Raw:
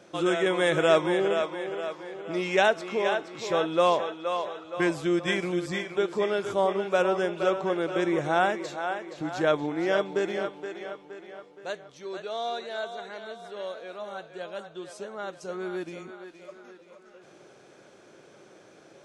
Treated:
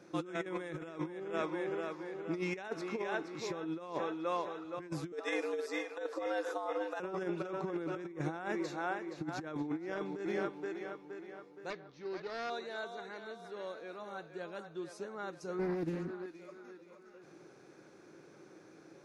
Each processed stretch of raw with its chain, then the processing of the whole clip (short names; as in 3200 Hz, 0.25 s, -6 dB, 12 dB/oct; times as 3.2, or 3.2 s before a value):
5.12–7 steep high-pass 220 Hz + frequency shift +110 Hz + notch 2300 Hz, Q 10
11.7–12.5 self-modulated delay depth 0.39 ms + LPF 5100 Hz 24 dB/oct
15.59–16.26 low shelf 270 Hz +11.5 dB + Doppler distortion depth 0.53 ms
whole clip: thirty-one-band EQ 160 Hz +5 dB, 315 Hz +7 dB, 630 Hz -7 dB, 3150 Hz -10 dB, 8000 Hz -7 dB; negative-ratio compressor -28 dBFS, ratio -0.5; gain -8 dB